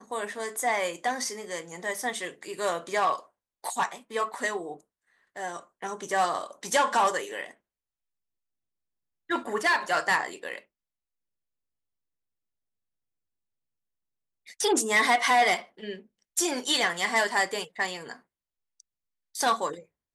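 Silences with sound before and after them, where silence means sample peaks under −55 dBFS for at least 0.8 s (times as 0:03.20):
0:07.54–0:09.29
0:10.64–0:14.46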